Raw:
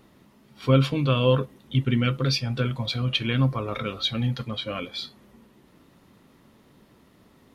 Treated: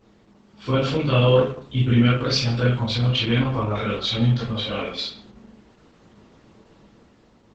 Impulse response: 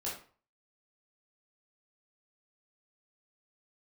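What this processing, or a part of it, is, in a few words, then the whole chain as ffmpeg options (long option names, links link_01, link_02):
speakerphone in a meeting room: -filter_complex "[1:a]atrim=start_sample=2205[link_01];[0:a][link_01]afir=irnorm=-1:irlink=0,asplit=2[link_02][link_03];[link_03]adelay=150,highpass=300,lowpass=3400,asoftclip=type=hard:threshold=-18dB,volume=-17dB[link_04];[link_02][link_04]amix=inputs=2:normalize=0,dynaudnorm=framelen=130:gausssize=13:maxgain=3.5dB" -ar 48000 -c:a libopus -b:a 12k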